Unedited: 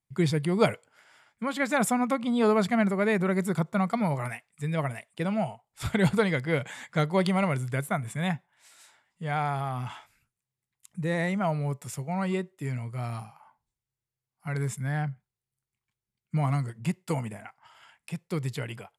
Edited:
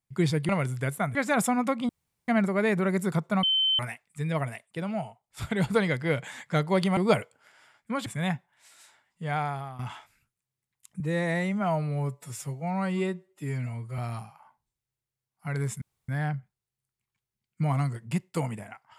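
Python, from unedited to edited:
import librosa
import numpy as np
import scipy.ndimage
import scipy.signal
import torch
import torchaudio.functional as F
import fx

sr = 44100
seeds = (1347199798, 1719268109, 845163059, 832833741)

y = fx.edit(x, sr, fx.swap(start_s=0.49, length_s=1.09, other_s=7.4, other_length_s=0.66),
    fx.room_tone_fill(start_s=2.32, length_s=0.39),
    fx.bleep(start_s=3.86, length_s=0.36, hz=3080.0, db=-21.0),
    fx.clip_gain(start_s=5.08, length_s=1.07, db=-3.5),
    fx.fade_out_to(start_s=9.35, length_s=0.44, floor_db=-12.5),
    fx.stretch_span(start_s=11.0, length_s=1.99, factor=1.5),
    fx.insert_room_tone(at_s=14.82, length_s=0.27), tone=tone)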